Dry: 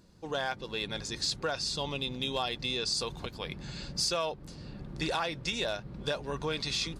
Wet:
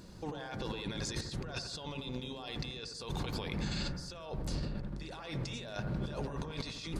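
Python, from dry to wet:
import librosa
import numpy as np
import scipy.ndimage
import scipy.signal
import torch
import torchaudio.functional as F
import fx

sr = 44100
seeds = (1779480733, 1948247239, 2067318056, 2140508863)

y = fx.low_shelf(x, sr, hz=66.0, db=10.5, at=(3.9, 5.02))
y = fx.over_compress(y, sr, threshold_db=-43.0, ratio=-1.0)
y = fx.echo_bbd(y, sr, ms=85, stages=1024, feedback_pct=57, wet_db=-7.0)
y = y * 10.0 ** (1.5 / 20.0)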